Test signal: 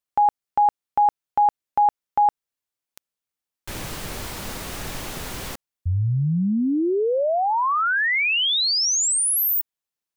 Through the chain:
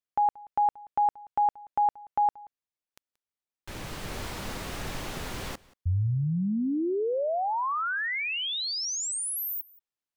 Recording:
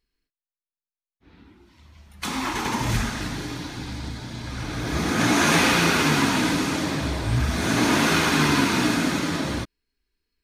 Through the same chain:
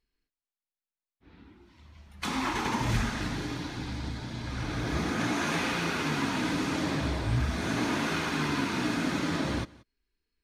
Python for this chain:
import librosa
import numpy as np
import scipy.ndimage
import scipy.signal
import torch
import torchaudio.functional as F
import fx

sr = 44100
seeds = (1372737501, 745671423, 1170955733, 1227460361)

y = fx.high_shelf(x, sr, hz=7100.0, db=-9.0)
y = fx.rider(y, sr, range_db=4, speed_s=0.5)
y = y + 10.0 ** (-23.0 / 20.0) * np.pad(y, (int(180 * sr / 1000.0), 0))[:len(y)]
y = F.gain(torch.from_numpy(y), -6.5).numpy()